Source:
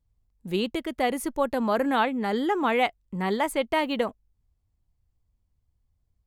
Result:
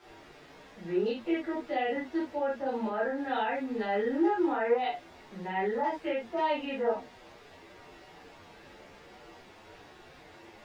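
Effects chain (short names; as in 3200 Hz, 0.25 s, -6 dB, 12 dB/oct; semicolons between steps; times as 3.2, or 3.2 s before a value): LFO low-pass saw down 3.2 Hz 990–5700 Hz; notch comb 1100 Hz; added noise pink -46 dBFS; HPF 190 Hz 6 dB/oct; limiter -21 dBFS, peak gain reduction 9.5 dB; three-band isolator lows -13 dB, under 270 Hz, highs -16 dB, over 5700 Hz; time stretch by phase-locked vocoder 1.7×; tilt -2 dB/oct; reverb, pre-delay 12 ms, DRR -6 dB; gain -8 dB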